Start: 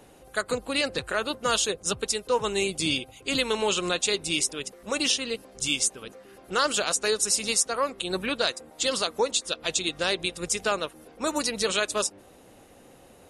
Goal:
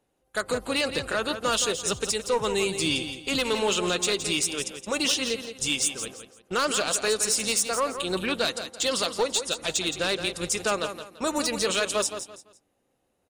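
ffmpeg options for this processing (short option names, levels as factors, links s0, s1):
-filter_complex "[0:a]agate=range=0.0631:threshold=0.00631:ratio=16:detection=peak,aeval=exprs='0.398*(cos(1*acos(clip(val(0)/0.398,-1,1)))-cos(1*PI/2))+0.0891*(cos(5*acos(clip(val(0)/0.398,-1,1)))-cos(5*PI/2))':c=same,asplit=2[s0][s1];[s1]alimiter=limit=0.15:level=0:latency=1,volume=0.708[s2];[s0][s2]amix=inputs=2:normalize=0,aecho=1:1:169|338|507:0.335|0.0971|0.0282,volume=0.376"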